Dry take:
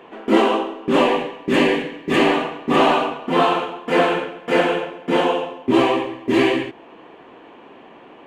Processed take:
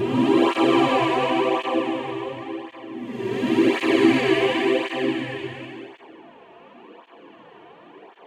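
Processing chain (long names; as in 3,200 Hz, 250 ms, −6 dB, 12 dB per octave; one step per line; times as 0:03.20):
extreme stretch with random phases 5.5×, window 0.25 s, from 0:05.67
through-zero flanger with one copy inverted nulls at 0.92 Hz, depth 4 ms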